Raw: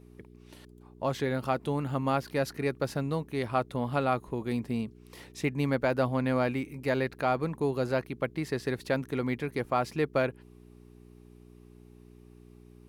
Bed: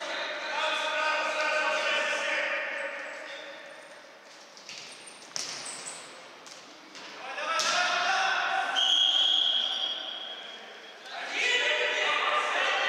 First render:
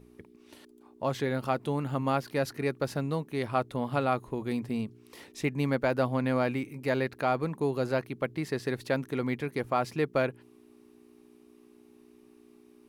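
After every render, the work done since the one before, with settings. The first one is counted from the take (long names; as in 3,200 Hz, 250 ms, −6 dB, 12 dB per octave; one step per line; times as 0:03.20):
hum removal 60 Hz, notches 3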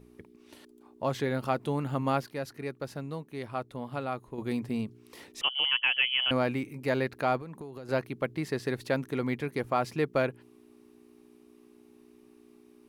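0:02.26–0:04.38: clip gain −6.5 dB
0:05.41–0:06.31: voice inversion scrambler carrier 3,200 Hz
0:07.37–0:07.89: downward compressor 12 to 1, threshold −38 dBFS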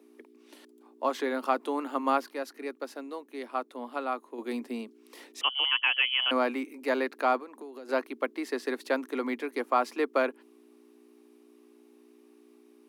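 Butterworth high-pass 240 Hz 72 dB per octave
dynamic equaliser 1,100 Hz, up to +6 dB, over −46 dBFS, Q 1.9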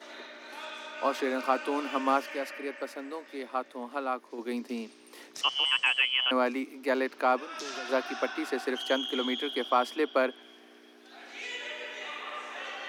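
mix in bed −12.5 dB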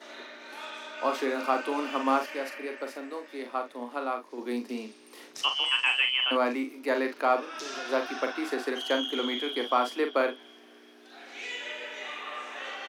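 ambience of single reflections 41 ms −7 dB, 60 ms −17 dB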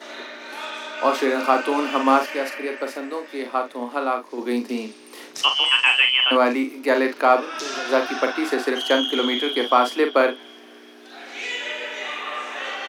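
level +8.5 dB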